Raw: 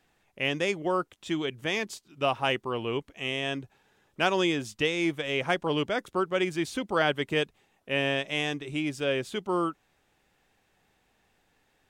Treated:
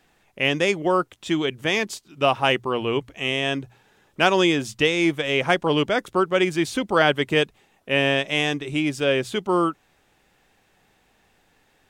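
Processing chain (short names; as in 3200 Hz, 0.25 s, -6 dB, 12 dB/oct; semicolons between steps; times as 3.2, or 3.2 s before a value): notches 60/120 Hz; gain +7 dB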